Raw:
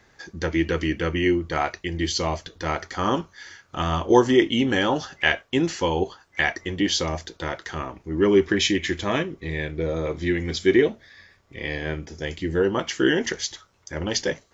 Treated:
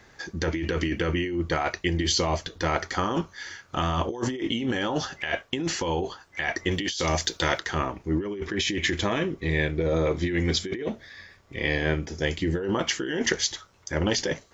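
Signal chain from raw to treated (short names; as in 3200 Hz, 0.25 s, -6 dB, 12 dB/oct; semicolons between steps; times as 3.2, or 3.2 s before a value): 6.71–7.6 high shelf 2400 Hz +11.5 dB; negative-ratio compressor -26 dBFS, ratio -1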